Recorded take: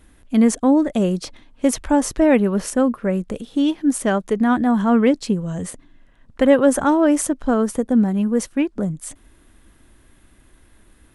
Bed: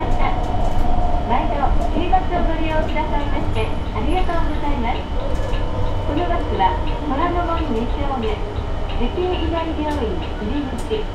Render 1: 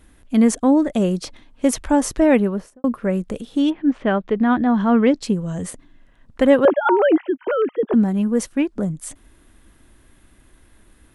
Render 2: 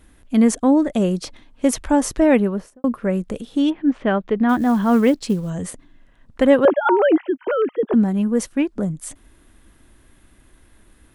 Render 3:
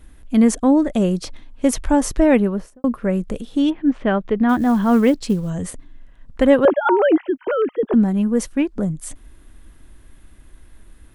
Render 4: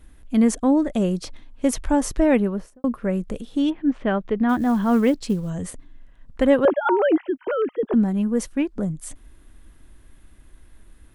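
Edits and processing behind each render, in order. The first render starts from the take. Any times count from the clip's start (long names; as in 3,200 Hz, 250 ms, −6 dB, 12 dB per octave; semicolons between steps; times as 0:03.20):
0:02.35–0:02.84: fade out and dull; 0:03.69–0:05.21: low-pass filter 2,600 Hz → 6,400 Hz 24 dB per octave; 0:06.65–0:07.94: three sine waves on the formant tracks
0:04.49–0:05.50: floating-point word with a short mantissa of 4 bits
low-shelf EQ 68 Hz +11 dB
level −3.5 dB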